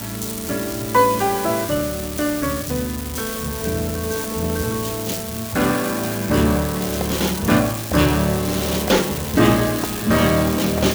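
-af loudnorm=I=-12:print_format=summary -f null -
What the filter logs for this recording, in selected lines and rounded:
Input Integrated:    -19.8 LUFS
Input True Peak:      -2.6 dBTP
Input LRA:             4.8 LU
Input Threshold:     -29.8 LUFS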